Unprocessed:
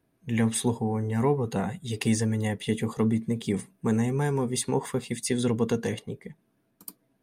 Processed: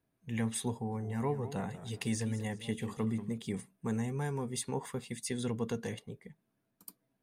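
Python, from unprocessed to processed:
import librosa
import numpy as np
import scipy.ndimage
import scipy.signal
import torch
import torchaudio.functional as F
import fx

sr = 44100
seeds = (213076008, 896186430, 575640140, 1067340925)

y = fx.peak_eq(x, sr, hz=340.0, db=-3.5, octaves=0.97)
y = fx.echo_warbled(y, sr, ms=191, feedback_pct=33, rate_hz=2.8, cents=142, wet_db=-13.0, at=(0.73, 3.38))
y = y * 10.0 ** (-8.0 / 20.0)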